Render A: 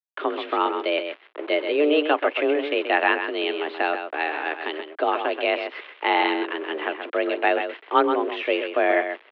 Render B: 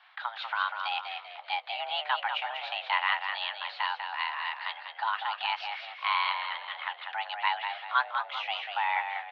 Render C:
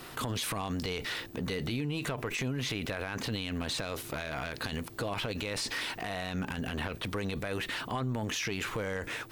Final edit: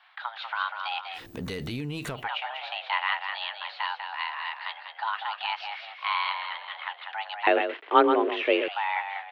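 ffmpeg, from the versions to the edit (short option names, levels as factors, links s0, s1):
-filter_complex "[1:a]asplit=3[s0][s1][s2];[s0]atrim=end=1.28[s3];[2:a]atrim=start=1.12:end=2.29[s4];[s1]atrim=start=2.13:end=7.472[s5];[0:a]atrim=start=7.468:end=8.682[s6];[s2]atrim=start=8.678[s7];[s3][s4]acrossfade=d=0.16:c1=tri:c2=tri[s8];[s8][s5]acrossfade=d=0.16:c1=tri:c2=tri[s9];[s9][s6]acrossfade=d=0.004:c1=hsin:c2=hsin[s10];[s10][s7]acrossfade=d=0.004:c1=hsin:c2=hsin"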